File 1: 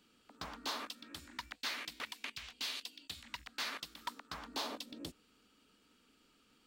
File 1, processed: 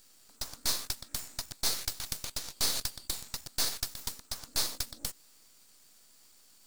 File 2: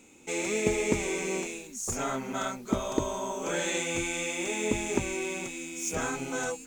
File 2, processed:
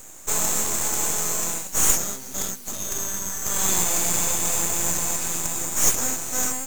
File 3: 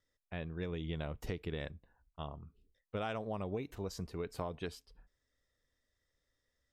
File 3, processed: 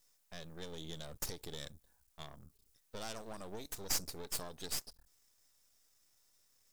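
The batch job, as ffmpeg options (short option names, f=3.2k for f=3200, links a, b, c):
-af "aeval=exprs='(tanh(15.8*val(0)+0.35)-tanh(0.35))/15.8':c=same,aexciter=amount=6.3:drive=9.8:freq=4.1k,aeval=exprs='max(val(0),0)':c=same,volume=-1dB"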